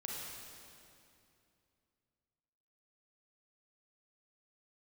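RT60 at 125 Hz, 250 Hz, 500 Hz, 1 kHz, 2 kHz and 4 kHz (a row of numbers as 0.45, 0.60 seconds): 3.2, 3.1, 2.7, 2.5, 2.4, 2.2 seconds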